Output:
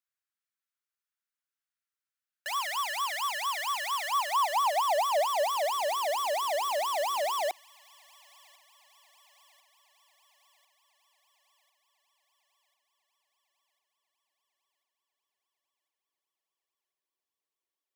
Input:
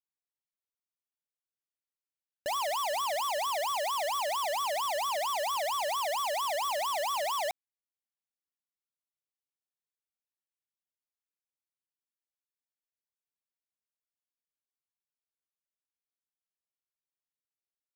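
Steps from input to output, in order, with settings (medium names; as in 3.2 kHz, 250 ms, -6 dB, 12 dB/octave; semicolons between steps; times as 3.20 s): high-pass sweep 1.4 kHz -> 360 Hz, 3.97–5.81 s; feedback echo behind a high-pass 1046 ms, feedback 59%, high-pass 1.9 kHz, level -21.5 dB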